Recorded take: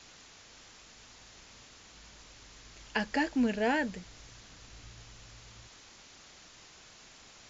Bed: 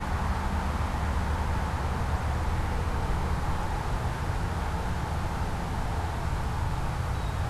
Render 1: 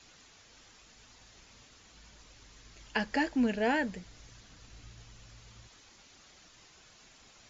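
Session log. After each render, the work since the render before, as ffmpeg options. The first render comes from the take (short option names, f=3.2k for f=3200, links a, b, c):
-af "afftdn=nr=6:nf=-55"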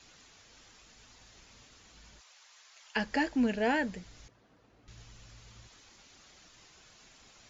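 -filter_complex "[0:a]asplit=3[a][b][c];[a]afade=t=out:st=2.19:d=0.02[d];[b]highpass=f=690:w=0.5412,highpass=f=690:w=1.3066,afade=t=in:st=2.19:d=0.02,afade=t=out:st=2.95:d=0.02[e];[c]afade=t=in:st=2.95:d=0.02[f];[d][e][f]amix=inputs=3:normalize=0,asettb=1/sr,asplit=3[g][h][i];[g]atrim=end=4.284[j];[h]atrim=start=4.28:end=4.88,asetpts=PTS-STARTPTS,afade=t=in:d=0.004:c=qsin,afade=t=out:st=0.596:d=0.004:c=qsin,bandpass=f=480:t=q:w=0.81[k];[i]atrim=start=4.876[l];[j][k]acrossfade=d=0.004:c1=hsin:c2=qsin[m];[m][l]acrossfade=d=0.004:c1=qsin:c2=hsin"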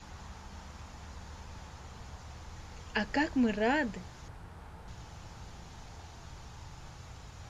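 -filter_complex "[1:a]volume=-19dB[a];[0:a][a]amix=inputs=2:normalize=0"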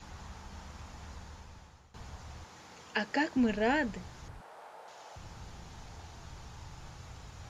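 -filter_complex "[0:a]asettb=1/sr,asplit=3[a][b][c];[a]atrim=end=2.444[d];[b]atrim=start=2.44:end=3.37,asetpts=PTS-STARTPTS,afade=t=in:d=0.004:c=qsin,afade=t=out:st=0.926:d=0.004:c=qsin,highpass=210[e];[c]atrim=start=3.366[f];[d][e]acrossfade=d=0.004:c1=hsin:c2=qsin[g];[g][f]acrossfade=d=0.004:c1=qsin:c2=hsin,asettb=1/sr,asplit=3[h][i][j];[h]atrim=end=4.414[k];[i]atrim=start=4.41:end=5.16,asetpts=PTS-STARTPTS,afade=t=in:d=0.004:c=qsin,afade=t=out:st=0.746:d=0.004:c=qsin,highpass=f=590:t=q:w=2.4[l];[j]atrim=start=5.156[m];[k][l]acrossfade=d=0.004:c1=hsin:c2=qsin[n];[n][m]acrossfade=d=0.004:c1=qsin:c2=hsin,asplit=2[o][p];[o]atrim=end=1.94,asetpts=PTS-STARTPTS,afade=t=out:st=1.13:d=0.81:silence=0.141254[q];[p]atrim=start=1.94,asetpts=PTS-STARTPTS,afade=t=in:d=0.004:c=hsin:silence=0.141254[r];[q][r]concat=n=2:v=0:a=1"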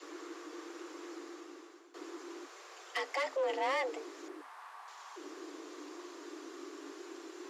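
-af "asoftclip=type=tanh:threshold=-29dB,afreqshift=270"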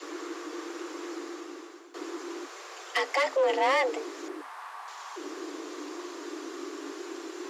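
-af "volume=8.5dB"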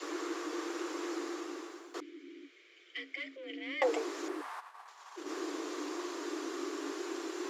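-filter_complex "[0:a]asettb=1/sr,asplit=3[a][b][c];[a]atrim=end=2.004[d];[b]atrim=start=2:end=3.82,asetpts=PTS-STARTPTS,afade=t=in:d=0.004:c=qsin,afade=t=out:st=1.816:d=0.004:c=qsin,asplit=3[e][f][g];[e]bandpass=f=270:t=q:w=8,volume=0dB[h];[f]bandpass=f=2.29k:t=q:w=8,volume=-6dB[i];[g]bandpass=f=3.01k:t=q:w=8,volume=-9dB[j];[h][i][j]amix=inputs=3:normalize=0[k];[c]atrim=start=3.816[l];[d][k]acrossfade=d=0.004:c1=hsin:c2=qsin[m];[m][l]acrossfade=d=0.004:c1=qsin:c2=hsin,asplit=3[n][o][p];[n]afade=t=out:st=4.59:d=0.02[q];[o]agate=range=-33dB:threshold=-35dB:ratio=3:release=100:detection=peak,afade=t=in:st=4.59:d=0.02,afade=t=out:st=5.28:d=0.02[r];[p]afade=t=in:st=5.28:d=0.02[s];[q][r][s]amix=inputs=3:normalize=0"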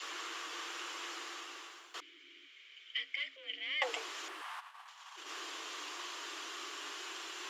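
-af "highpass=970,equalizer=f=3k:t=o:w=0.54:g=9"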